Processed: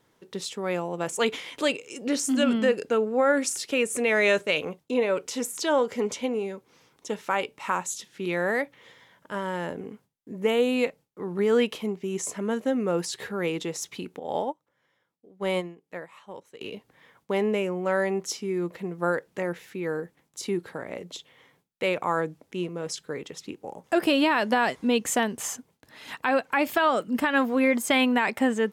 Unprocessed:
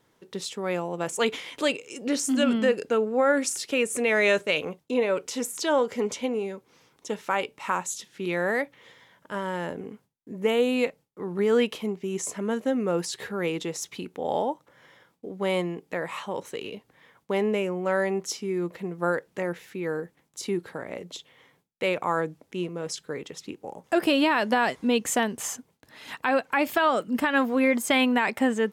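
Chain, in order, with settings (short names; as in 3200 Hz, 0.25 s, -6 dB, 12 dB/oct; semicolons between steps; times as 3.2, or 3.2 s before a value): 14.19–16.61 upward expander 2.5:1, over -35 dBFS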